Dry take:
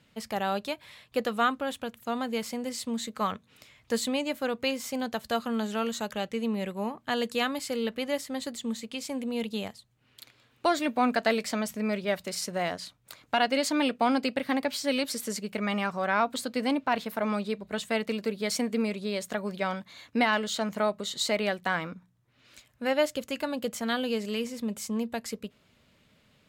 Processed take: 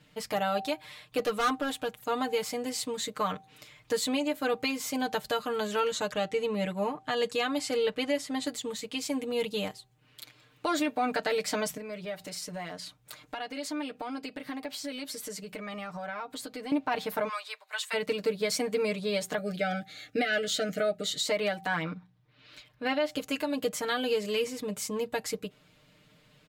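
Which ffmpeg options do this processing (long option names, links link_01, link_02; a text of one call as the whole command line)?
ffmpeg -i in.wav -filter_complex "[0:a]asettb=1/sr,asplit=3[link_01][link_02][link_03];[link_01]atrim=end=1.184[link_04];[link_02]atrim=start=1.18:end=1.94,asetpts=PTS-STARTPTS,afade=type=in:duration=0.004:curve=qsin,afade=type=out:start_time=0.756:duration=0.004:curve=qsin,asoftclip=type=hard:threshold=-25.5dB[link_05];[link_03]atrim=start=1.936[link_06];[link_04][link_05]acrossfade=duration=0.004:curve1=hsin:curve2=qsin[link_07];[link_07][link_06]acrossfade=duration=0.004:curve1=qsin:curve2=hsin,asettb=1/sr,asplit=3[link_08][link_09][link_10];[link_08]atrim=end=5.794[link_11];[link_09]atrim=start=5.79:end=8.47,asetpts=PTS-STARTPTS,afade=type=in:duration=0.004:curve=qsin,afade=type=out:start_time=2.676:duration=0.004:curve=qsin,lowpass=9800[link_12];[link_10]atrim=start=8.466[link_13];[link_11][link_12]acrossfade=duration=0.004:curve1=hsin:curve2=qsin[link_14];[link_14][link_13]acrossfade=duration=0.004:curve1=qsin:curve2=hsin,asettb=1/sr,asplit=3[link_15][link_16][link_17];[link_15]atrim=end=11.774[link_18];[link_16]atrim=start=11.77:end=16.72,asetpts=PTS-STARTPTS,afade=type=in:duration=0.004:curve=qsin,afade=type=out:start_time=4.946:duration=0.004:curve=qsin,acompressor=threshold=-40dB:ratio=3:attack=3.2:release=140:knee=1:detection=peak[link_19];[link_17]atrim=start=16.716[link_20];[link_18][link_19]acrossfade=duration=0.004:curve1=hsin:curve2=qsin[link_21];[link_21][link_20]acrossfade=duration=0.004:curve1=qsin:curve2=hsin,asplit=3[link_22][link_23][link_24];[link_22]afade=type=out:start_time=17.27:duration=0.02[link_25];[link_23]highpass=frequency=940:width=0.5412,highpass=frequency=940:width=1.3066,afade=type=in:start_time=17.27:duration=0.02,afade=type=out:start_time=17.93:duration=0.02[link_26];[link_24]afade=type=in:start_time=17.93:duration=0.02[link_27];[link_25][link_26][link_27]amix=inputs=3:normalize=0,asettb=1/sr,asplit=3[link_28][link_29][link_30];[link_28]atrim=end=19.384[link_31];[link_29]atrim=start=19.38:end=21.27,asetpts=PTS-STARTPTS,afade=type=in:duration=0.004:curve=qsin,afade=type=out:start_time=1.886:duration=0.004:curve=qsin,asuperstop=centerf=1000:order=20:qfactor=2.6[link_32];[link_30]atrim=start=21.266[link_33];[link_31][link_32]acrossfade=duration=0.004:curve1=hsin:curve2=qsin[link_34];[link_34][link_33]acrossfade=duration=0.004:curve1=qsin:curve2=hsin,asettb=1/sr,asplit=3[link_35][link_36][link_37];[link_35]atrim=end=21.824[link_38];[link_36]atrim=start=21.82:end=23.11,asetpts=PTS-STARTPTS,afade=type=in:duration=0.004:curve=qsin,afade=type=out:start_time=1.286:duration=0.004:curve=qsin,highshelf=frequency=5600:width_type=q:width=1.5:gain=-9[link_39];[link_37]atrim=start=23.106[link_40];[link_38][link_39]acrossfade=duration=0.004:curve1=hsin:curve2=qsin[link_41];[link_41][link_40]acrossfade=duration=0.004:curve1=qsin:curve2=hsin,aecho=1:1:6.6:0.92,bandreject=frequency=386.6:width_type=h:width=4,bandreject=frequency=773.2:width_type=h:width=4,alimiter=limit=-19dB:level=0:latency=1:release=152" out.wav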